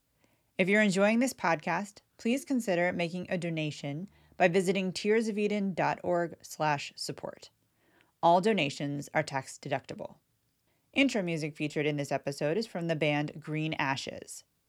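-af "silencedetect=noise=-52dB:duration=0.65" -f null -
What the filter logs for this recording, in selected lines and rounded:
silence_start: 10.13
silence_end: 10.94 | silence_duration: 0.81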